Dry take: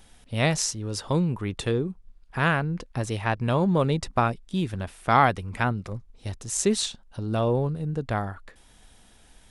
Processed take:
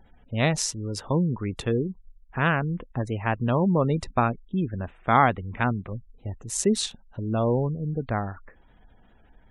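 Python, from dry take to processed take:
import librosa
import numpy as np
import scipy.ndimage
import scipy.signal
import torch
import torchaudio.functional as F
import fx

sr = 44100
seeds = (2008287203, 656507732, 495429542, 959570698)

y = fx.wiener(x, sr, points=9)
y = fx.spec_gate(y, sr, threshold_db=-30, keep='strong')
y = fx.dynamic_eq(y, sr, hz=240.0, q=4.1, threshold_db=-41.0, ratio=4.0, max_db=3)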